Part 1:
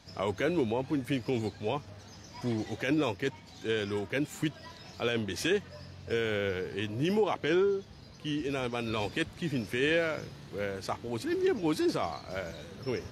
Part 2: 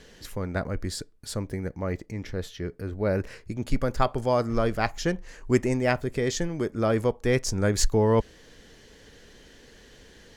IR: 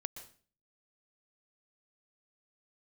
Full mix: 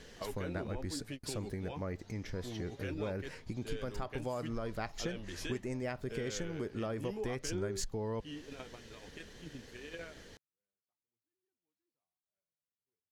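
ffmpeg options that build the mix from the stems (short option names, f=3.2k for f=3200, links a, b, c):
-filter_complex "[0:a]flanger=delay=4.9:depth=6.6:regen=48:speed=0.65:shape=sinusoidal,volume=-3.5dB[a];[1:a]acompressor=threshold=-24dB:ratio=6,volume=-2.5dB,asplit=2[b][c];[c]apad=whole_len=578549[d];[a][d]sidechaingate=range=-57dB:threshold=-51dB:ratio=16:detection=peak[e];[e][b]amix=inputs=2:normalize=0,acompressor=threshold=-40dB:ratio=2"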